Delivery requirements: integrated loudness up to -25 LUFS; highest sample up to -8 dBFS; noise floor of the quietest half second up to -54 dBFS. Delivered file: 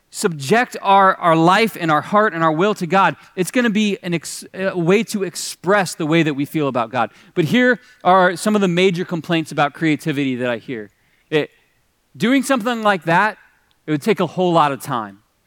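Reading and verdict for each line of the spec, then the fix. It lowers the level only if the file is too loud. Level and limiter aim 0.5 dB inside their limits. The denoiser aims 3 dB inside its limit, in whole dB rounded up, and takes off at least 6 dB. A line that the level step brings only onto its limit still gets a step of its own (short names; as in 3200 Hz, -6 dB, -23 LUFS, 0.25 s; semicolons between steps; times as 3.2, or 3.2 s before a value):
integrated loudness -17.5 LUFS: fail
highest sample -2.5 dBFS: fail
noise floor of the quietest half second -62 dBFS: OK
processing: gain -8 dB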